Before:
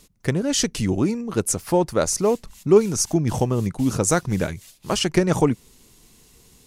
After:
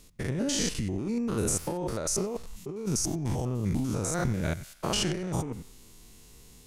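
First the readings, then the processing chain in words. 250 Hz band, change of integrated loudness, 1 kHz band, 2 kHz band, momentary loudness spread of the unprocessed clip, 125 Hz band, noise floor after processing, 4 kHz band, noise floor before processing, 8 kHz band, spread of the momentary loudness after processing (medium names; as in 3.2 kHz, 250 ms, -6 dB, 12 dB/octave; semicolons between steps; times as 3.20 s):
-8.5 dB, -8.5 dB, -10.0 dB, -8.0 dB, 8 LU, -6.5 dB, -54 dBFS, -6.0 dB, -54 dBFS, -6.5 dB, 7 LU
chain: spectrogram pixelated in time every 100 ms; compressor with a negative ratio -27 dBFS, ratio -1; bass shelf 64 Hz +7 dB; on a send: band-passed feedback delay 92 ms, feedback 55%, band-pass 1.6 kHz, level -17 dB; on the sum: trim -3.5 dB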